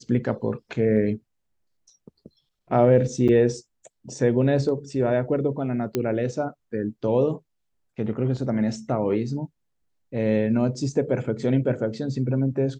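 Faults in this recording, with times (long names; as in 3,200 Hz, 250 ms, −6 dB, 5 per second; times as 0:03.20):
0:03.28–0:03.29: drop-out 7 ms
0:05.95: click −11 dBFS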